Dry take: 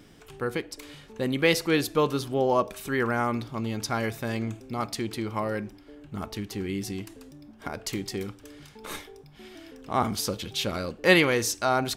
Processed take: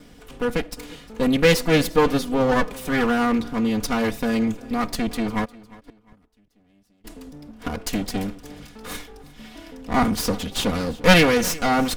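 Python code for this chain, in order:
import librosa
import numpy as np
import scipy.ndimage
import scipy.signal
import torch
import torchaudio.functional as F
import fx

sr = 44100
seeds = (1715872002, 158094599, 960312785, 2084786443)

y = fx.lower_of_two(x, sr, delay_ms=4.1)
y = fx.low_shelf(y, sr, hz=210.0, db=7.5)
y = fx.gate_flip(y, sr, shuts_db=-37.0, range_db=-35, at=(5.44, 7.04), fade=0.02)
y = fx.echo_feedback(y, sr, ms=353, feedback_pct=32, wet_db=-21)
y = y * 10.0 ** (5.0 / 20.0)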